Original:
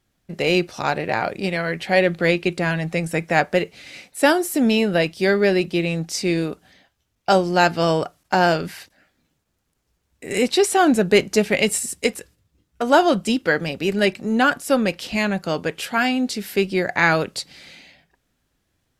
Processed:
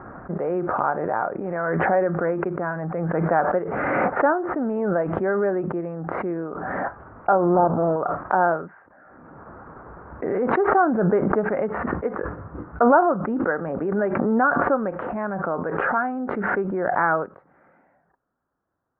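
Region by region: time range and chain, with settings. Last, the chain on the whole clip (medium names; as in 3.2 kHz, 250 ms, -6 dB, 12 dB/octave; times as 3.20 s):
7.55–7.96 s: square wave that keeps the level + Gaussian low-pass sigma 8.8 samples
whole clip: steep low-pass 1.4 kHz 48 dB/octave; tilt EQ +4 dB/octave; swell ahead of each attack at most 21 dB/s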